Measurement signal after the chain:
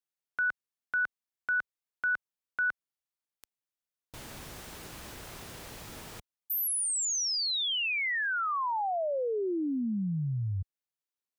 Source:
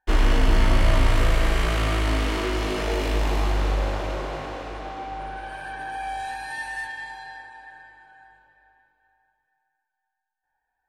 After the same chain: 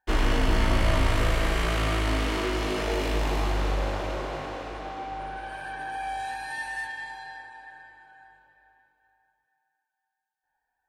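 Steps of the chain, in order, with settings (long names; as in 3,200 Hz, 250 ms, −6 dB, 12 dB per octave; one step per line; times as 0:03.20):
high-pass filter 46 Hz 6 dB per octave
level −1.5 dB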